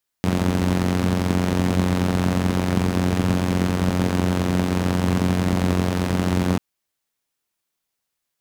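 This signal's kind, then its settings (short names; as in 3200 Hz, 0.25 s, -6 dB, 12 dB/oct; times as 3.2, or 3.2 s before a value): four-cylinder engine model, steady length 6.34 s, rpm 2700, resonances 110/190 Hz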